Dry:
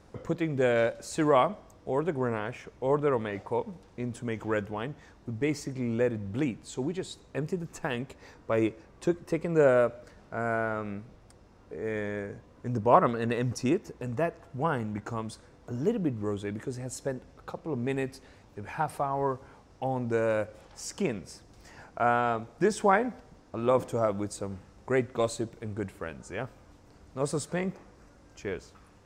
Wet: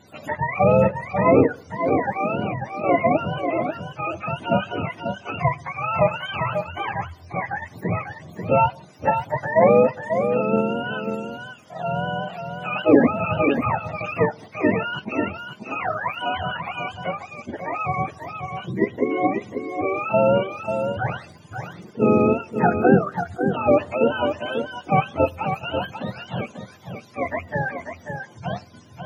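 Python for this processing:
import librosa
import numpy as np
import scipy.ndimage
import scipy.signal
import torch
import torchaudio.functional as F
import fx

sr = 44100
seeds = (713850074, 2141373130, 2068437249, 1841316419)

p1 = fx.octave_mirror(x, sr, pivot_hz=550.0)
p2 = fx.spec_gate(p1, sr, threshold_db=-30, keep='strong')
p3 = fx.level_steps(p2, sr, step_db=14)
p4 = p2 + F.gain(torch.from_numpy(p3), -1.0).numpy()
p5 = fx.dmg_crackle(p4, sr, seeds[0], per_s=18.0, level_db=-47.0, at=(21.26, 22.83), fade=0.02)
p6 = p5 + 10.0 ** (-7.0 / 20.0) * np.pad(p5, (int(541 * sr / 1000.0), 0))[:len(p5)]
p7 = fx.attack_slew(p6, sr, db_per_s=420.0)
y = F.gain(torch.from_numpy(p7), 5.5).numpy()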